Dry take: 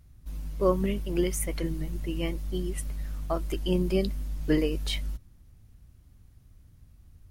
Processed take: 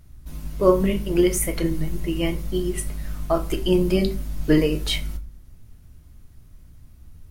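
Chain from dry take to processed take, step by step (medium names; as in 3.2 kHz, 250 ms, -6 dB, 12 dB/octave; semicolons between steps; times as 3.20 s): on a send: treble shelf 9.8 kHz +9 dB + reverberation RT60 0.40 s, pre-delay 3 ms, DRR 5.5 dB; on the sum: trim +6.5 dB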